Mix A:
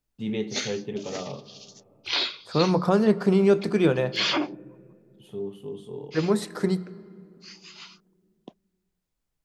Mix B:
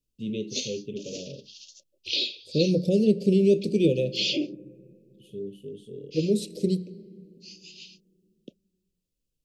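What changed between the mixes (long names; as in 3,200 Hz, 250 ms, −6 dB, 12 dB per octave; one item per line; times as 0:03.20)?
first voice: send off
master: add Chebyshev band-stop filter 550–2,600 Hz, order 4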